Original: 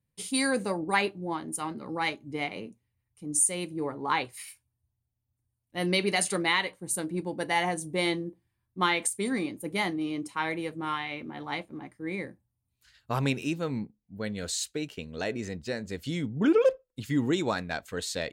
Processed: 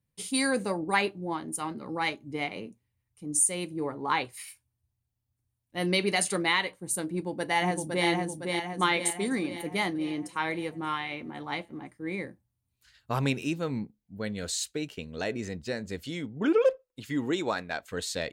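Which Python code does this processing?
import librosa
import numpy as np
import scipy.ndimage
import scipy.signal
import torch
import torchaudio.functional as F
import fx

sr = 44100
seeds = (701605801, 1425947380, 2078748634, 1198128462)

y = fx.echo_throw(x, sr, start_s=7.1, length_s=0.98, ms=510, feedback_pct=55, wet_db=-3.5)
y = fx.bass_treble(y, sr, bass_db=-8, treble_db=-3, at=(16.06, 17.91))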